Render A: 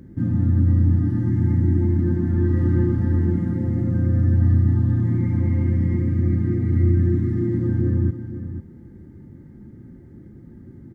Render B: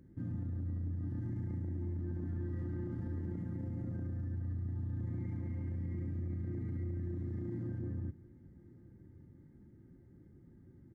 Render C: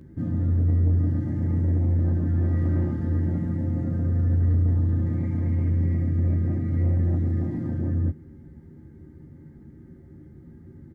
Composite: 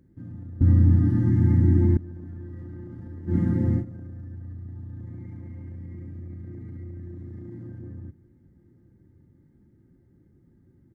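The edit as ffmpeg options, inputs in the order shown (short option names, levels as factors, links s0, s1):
-filter_complex "[0:a]asplit=2[s0][s1];[1:a]asplit=3[s2][s3][s4];[s2]atrim=end=0.612[s5];[s0]atrim=start=0.608:end=1.972[s6];[s3]atrim=start=1.968:end=3.36[s7];[s1]atrim=start=3.26:end=3.85[s8];[s4]atrim=start=3.75[s9];[s5][s6]acrossfade=d=0.004:c1=hsin:c2=hsin[s10];[s10][s7]acrossfade=d=0.004:c1=hsin:c2=hsin[s11];[s11][s8]acrossfade=d=0.1:c1=tri:c2=tri[s12];[s12][s9]acrossfade=d=0.1:c1=tri:c2=tri"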